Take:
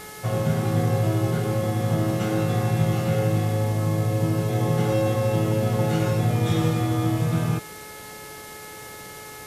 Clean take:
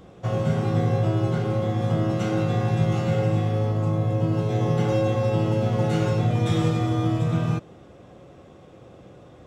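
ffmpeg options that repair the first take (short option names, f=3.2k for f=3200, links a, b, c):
-af "bandreject=f=427.7:t=h:w=4,bandreject=f=855.4:t=h:w=4,bandreject=f=1.2831k:t=h:w=4,bandreject=f=1.7108k:t=h:w=4,bandreject=f=2.1385k:t=h:w=4,afwtdn=0.0079"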